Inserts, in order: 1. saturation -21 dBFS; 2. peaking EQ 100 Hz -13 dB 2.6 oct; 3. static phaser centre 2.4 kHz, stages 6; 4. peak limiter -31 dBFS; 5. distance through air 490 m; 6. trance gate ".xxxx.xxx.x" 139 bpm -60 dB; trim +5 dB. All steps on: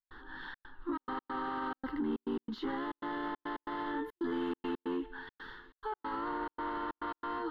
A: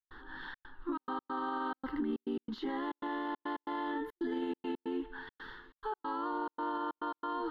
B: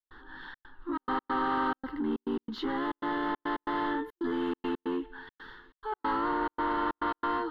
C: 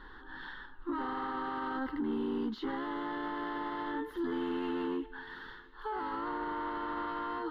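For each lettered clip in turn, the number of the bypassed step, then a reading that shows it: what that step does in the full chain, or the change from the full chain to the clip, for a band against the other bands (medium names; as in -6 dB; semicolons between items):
1, distortion -11 dB; 4, mean gain reduction 4.5 dB; 6, loudness change +1.5 LU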